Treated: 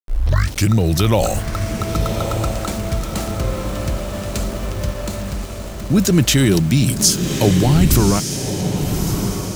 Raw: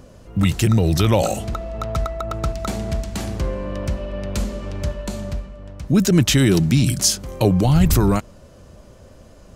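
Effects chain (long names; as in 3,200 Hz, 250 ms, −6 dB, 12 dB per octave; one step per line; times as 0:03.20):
turntable start at the beginning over 0.72 s
centre clipping without the shift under −32 dBFS
high-shelf EQ 6,800 Hz +4.5 dB
feedback delay with all-pass diffusion 1,169 ms, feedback 53%, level −6.5 dB
level +1 dB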